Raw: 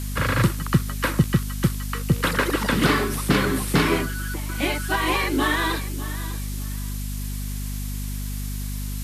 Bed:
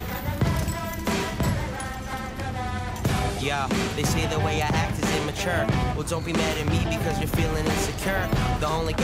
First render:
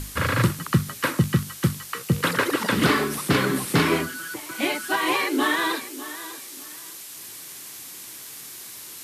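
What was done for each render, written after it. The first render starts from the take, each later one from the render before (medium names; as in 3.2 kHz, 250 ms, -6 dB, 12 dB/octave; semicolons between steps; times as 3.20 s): hum notches 50/100/150/200/250 Hz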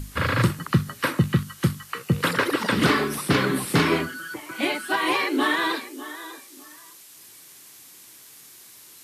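noise print and reduce 8 dB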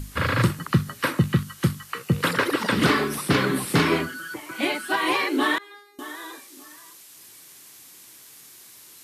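5.58–5.99 s: feedback comb 410 Hz, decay 0.66 s, mix 100%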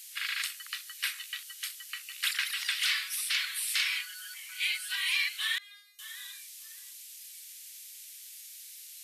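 inverse Chebyshev high-pass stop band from 370 Hz, stop band 80 dB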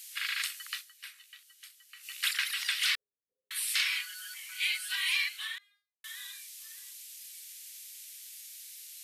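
0.79–2.06 s: dip -14 dB, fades 0.45 s exponential; 2.95–3.51 s: rippled Chebyshev low-pass 520 Hz, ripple 3 dB; 5.11–6.04 s: studio fade out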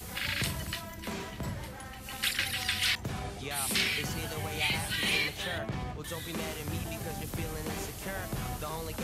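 add bed -12.5 dB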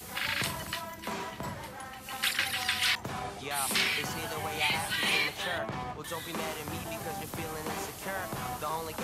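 high-pass 180 Hz 6 dB/octave; dynamic bell 1 kHz, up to +7 dB, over -52 dBFS, Q 1.2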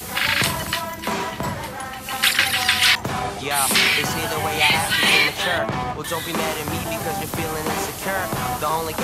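trim +12 dB; peak limiter -2 dBFS, peak gain reduction 2.5 dB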